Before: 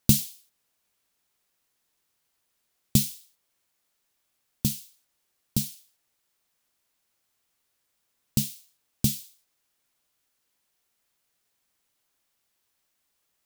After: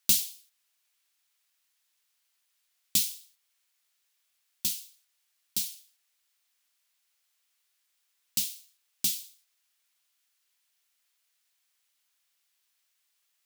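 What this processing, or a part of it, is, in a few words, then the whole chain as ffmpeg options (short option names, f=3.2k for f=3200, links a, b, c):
filter by subtraction: -filter_complex "[0:a]asplit=2[a][b];[b]lowpass=2.7k,volume=-1[c];[a][c]amix=inputs=2:normalize=0"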